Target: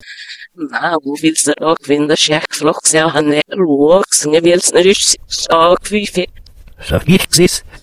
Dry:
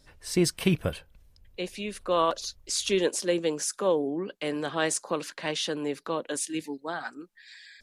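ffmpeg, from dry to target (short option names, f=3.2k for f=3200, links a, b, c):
-af "areverse,tremolo=f=9.4:d=0.63,apsyclip=23.5dB,volume=-1.5dB"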